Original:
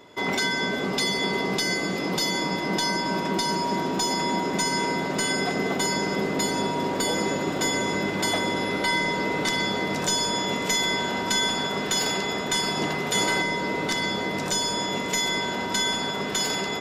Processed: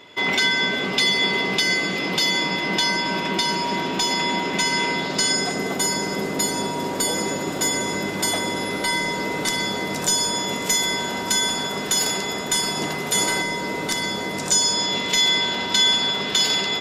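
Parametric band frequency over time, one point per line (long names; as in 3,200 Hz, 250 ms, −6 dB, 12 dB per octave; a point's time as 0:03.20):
parametric band +10.5 dB 1.4 octaves
0:04.90 2,800 Hz
0:05.68 11,000 Hz
0:14.27 11,000 Hz
0:15.02 3,600 Hz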